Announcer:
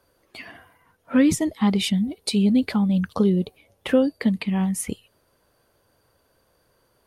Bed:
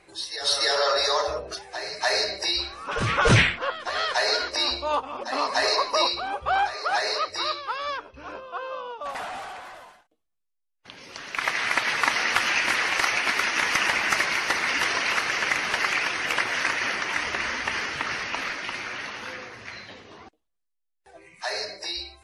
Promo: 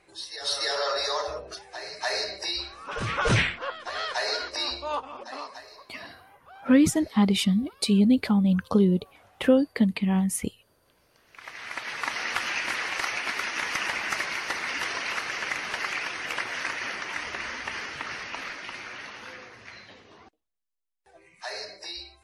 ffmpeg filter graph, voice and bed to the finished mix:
-filter_complex "[0:a]adelay=5550,volume=-1dB[a];[1:a]volume=15dB,afade=t=out:st=5.07:d=0.57:silence=0.0891251,afade=t=in:st=11.25:d=1.03:silence=0.1[b];[a][b]amix=inputs=2:normalize=0"

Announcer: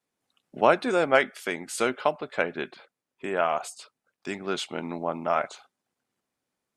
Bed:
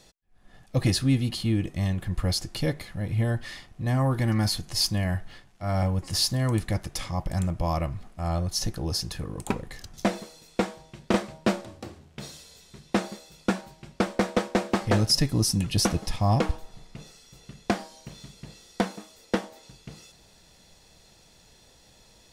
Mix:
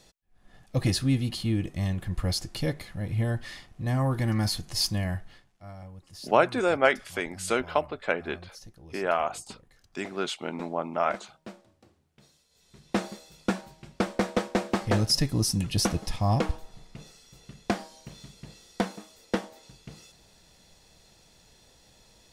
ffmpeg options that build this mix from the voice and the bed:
-filter_complex "[0:a]adelay=5700,volume=-1dB[a];[1:a]volume=15.5dB,afade=t=out:st=4.97:d=0.79:silence=0.133352,afade=t=in:st=12.49:d=0.5:silence=0.133352[b];[a][b]amix=inputs=2:normalize=0"

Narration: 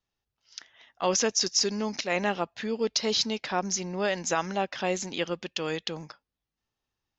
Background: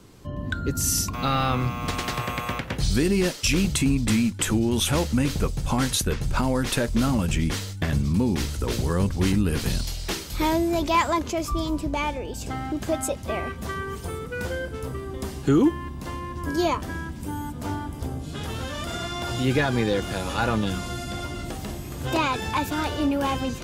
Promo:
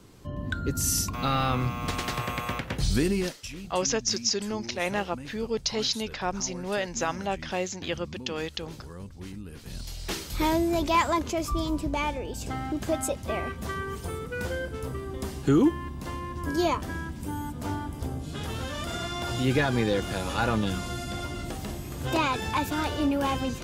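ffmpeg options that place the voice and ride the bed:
-filter_complex "[0:a]adelay=2700,volume=-1.5dB[a];[1:a]volume=14dB,afade=t=out:st=3.02:d=0.47:silence=0.158489,afade=t=in:st=9.65:d=0.58:silence=0.149624[b];[a][b]amix=inputs=2:normalize=0"

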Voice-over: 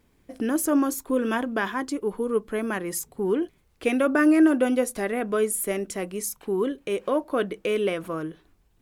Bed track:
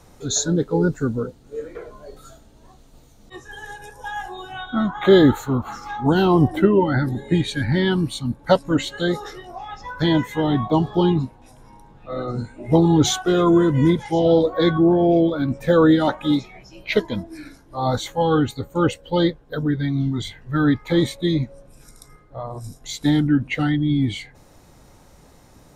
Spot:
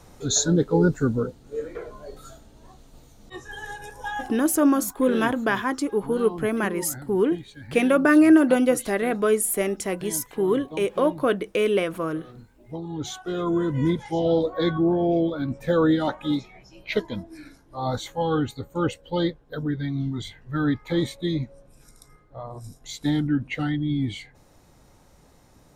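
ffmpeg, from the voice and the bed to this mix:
-filter_complex "[0:a]adelay=3900,volume=3dB[a];[1:a]volume=13.5dB,afade=t=out:st=4.08:d=0.46:silence=0.112202,afade=t=in:st=12.86:d=1.07:silence=0.211349[b];[a][b]amix=inputs=2:normalize=0"

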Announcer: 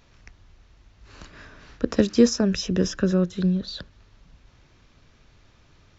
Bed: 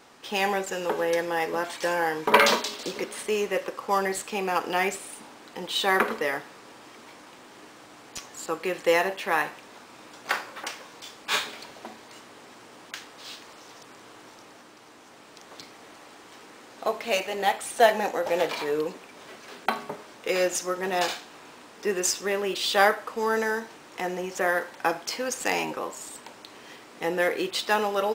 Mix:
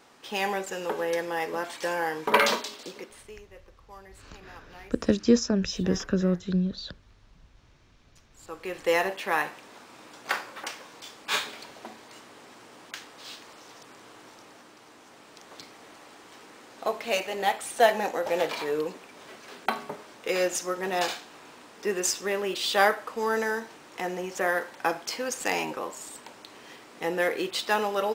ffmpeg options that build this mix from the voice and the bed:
-filter_complex "[0:a]adelay=3100,volume=-3.5dB[a];[1:a]volume=19dB,afade=t=out:st=2.42:d=0.97:silence=0.0944061,afade=t=in:st=8.3:d=0.7:silence=0.0794328[b];[a][b]amix=inputs=2:normalize=0"

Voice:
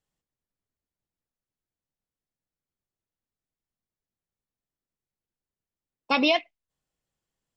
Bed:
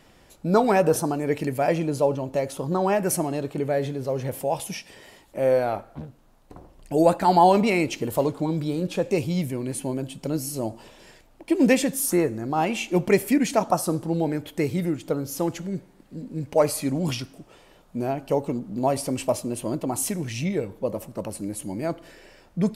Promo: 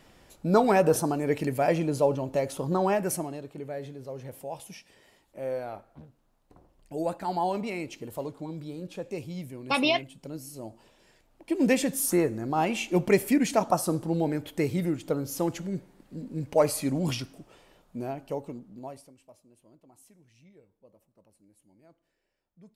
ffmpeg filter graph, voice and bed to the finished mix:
-filter_complex "[0:a]adelay=3600,volume=-2.5dB[a];[1:a]volume=7.5dB,afade=t=out:st=2.81:d=0.61:silence=0.316228,afade=t=in:st=11.09:d=0.9:silence=0.334965,afade=t=out:st=17.19:d=1.95:silence=0.0375837[b];[a][b]amix=inputs=2:normalize=0"

